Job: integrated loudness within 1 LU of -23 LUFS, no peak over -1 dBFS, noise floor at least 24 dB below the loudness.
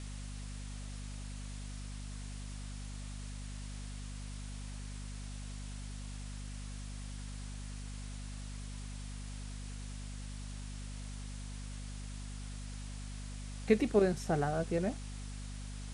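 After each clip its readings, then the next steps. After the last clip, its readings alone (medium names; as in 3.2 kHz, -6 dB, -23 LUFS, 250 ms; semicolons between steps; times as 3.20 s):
hum 50 Hz; highest harmonic 250 Hz; hum level -41 dBFS; noise floor -43 dBFS; noise floor target -65 dBFS; loudness -40.5 LUFS; peak level -13.5 dBFS; loudness target -23.0 LUFS
-> hum notches 50/100/150/200/250 Hz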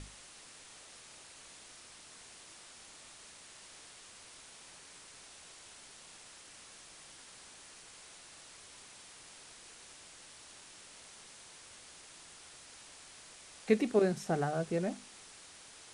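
hum not found; noise floor -55 dBFS; noise floor target -66 dBFS
-> noise reduction 11 dB, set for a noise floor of -55 dBFS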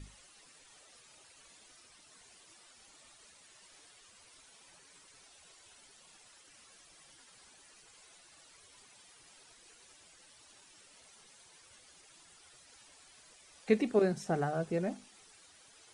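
noise floor -61 dBFS; loudness -32.5 LUFS; peak level -14.0 dBFS; loudness target -23.0 LUFS
-> trim +9.5 dB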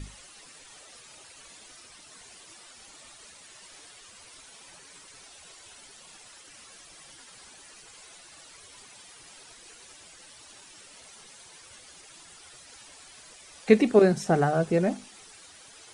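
loudness -23.0 LUFS; peak level -4.5 dBFS; noise floor -51 dBFS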